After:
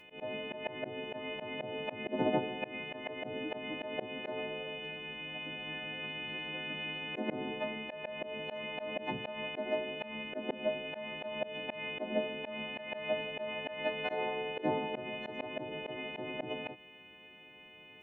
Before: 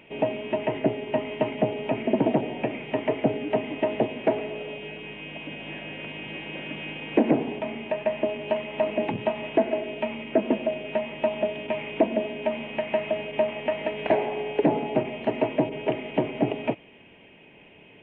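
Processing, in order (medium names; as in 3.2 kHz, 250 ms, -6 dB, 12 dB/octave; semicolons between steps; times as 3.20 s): partials quantised in pitch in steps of 3 st; slow attack 142 ms; trim -7 dB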